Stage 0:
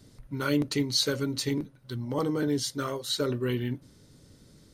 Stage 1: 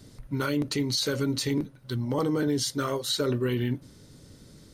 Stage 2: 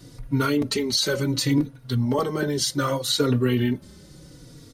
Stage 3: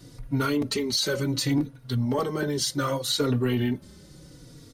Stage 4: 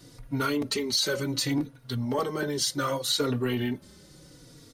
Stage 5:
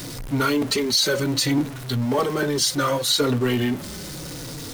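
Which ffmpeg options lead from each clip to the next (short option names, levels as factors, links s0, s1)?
-af "alimiter=limit=0.075:level=0:latency=1:release=56,volume=1.68"
-filter_complex "[0:a]asplit=2[s0][s1];[s1]adelay=3.6,afreqshift=-0.69[s2];[s0][s2]amix=inputs=2:normalize=1,volume=2.51"
-af "asoftclip=type=tanh:threshold=0.237,volume=0.794"
-af "lowshelf=f=270:g=-6.5"
-af "aeval=exprs='val(0)+0.5*0.0178*sgn(val(0))':c=same,volume=1.78"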